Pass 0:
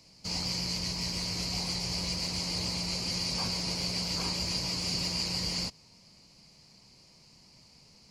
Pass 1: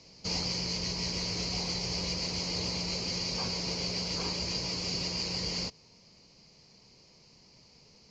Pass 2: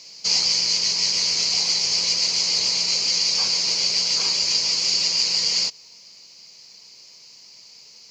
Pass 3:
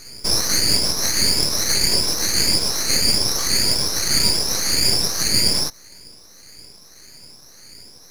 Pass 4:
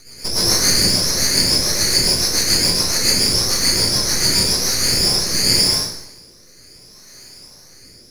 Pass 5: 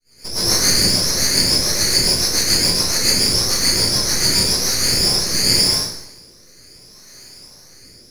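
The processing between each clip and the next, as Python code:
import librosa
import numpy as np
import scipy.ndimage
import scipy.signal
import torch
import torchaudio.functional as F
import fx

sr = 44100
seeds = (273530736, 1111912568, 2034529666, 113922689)

y1 = scipy.signal.sosfilt(scipy.signal.ellip(4, 1.0, 60, 6600.0, 'lowpass', fs=sr, output='sos'), x)
y1 = fx.peak_eq(y1, sr, hz=440.0, db=7.0, octaves=0.61)
y1 = fx.rider(y1, sr, range_db=10, speed_s=0.5)
y2 = fx.tilt_eq(y1, sr, slope=4.5)
y2 = y2 * librosa.db_to_amplitude(4.0)
y3 = fx.spec_ripple(y2, sr, per_octave=1.7, drift_hz=1.7, depth_db=20)
y3 = fx.fixed_phaser(y3, sr, hz=710.0, stages=6)
y3 = np.maximum(y3, 0.0)
y3 = y3 * librosa.db_to_amplitude(5.5)
y4 = fx.rider(y3, sr, range_db=10, speed_s=2.0)
y4 = fx.rotary_switch(y4, sr, hz=7.0, then_hz=0.65, switch_at_s=4.4)
y4 = fx.rev_plate(y4, sr, seeds[0], rt60_s=0.81, hf_ratio=0.85, predelay_ms=100, drr_db=-7.5)
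y4 = y4 * librosa.db_to_amplitude(-2.5)
y5 = fx.fade_in_head(y4, sr, length_s=0.55)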